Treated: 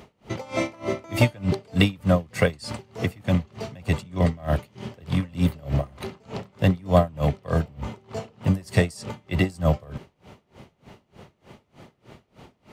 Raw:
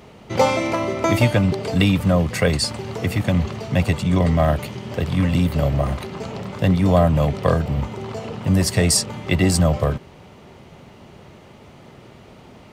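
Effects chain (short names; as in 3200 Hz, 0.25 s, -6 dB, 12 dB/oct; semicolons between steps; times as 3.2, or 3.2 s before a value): dB-linear tremolo 3.3 Hz, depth 27 dB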